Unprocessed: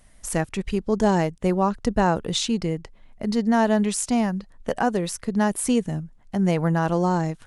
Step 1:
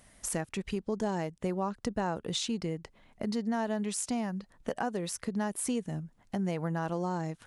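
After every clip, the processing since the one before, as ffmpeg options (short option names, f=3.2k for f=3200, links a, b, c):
-af "highpass=f=100:p=1,acompressor=threshold=-34dB:ratio=2.5"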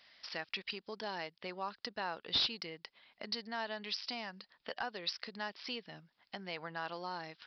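-af "aderivative,aresample=11025,asoftclip=type=hard:threshold=-39.5dB,aresample=44100,volume=12.5dB"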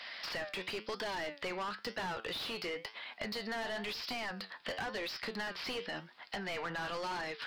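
-filter_complex "[0:a]flanger=delay=7.7:depth=4.1:regen=75:speed=0.97:shape=triangular,asplit=2[a][b];[b]highpass=f=720:p=1,volume=31dB,asoftclip=type=tanh:threshold=-24.5dB[c];[a][c]amix=inputs=2:normalize=0,lowpass=f=2.3k:p=1,volume=-6dB,acrossover=split=490|1100[d][e][f];[d]acompressor=threshold=-42dB:ratio=4[g];[e]acompressor=threshold=-48dB:ratio=4[h];[f]acompressor=threshold=-41dB:ratio=4[i];[g][h][i]amix=inputs=3:normalize=0,volume=1dB"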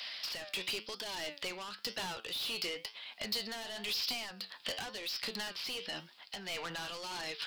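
-af "tremolo=f=1.5:d=0.43,aexciter=amount=3.6:drive=4:freq=2.6k,volume=-2.5dB"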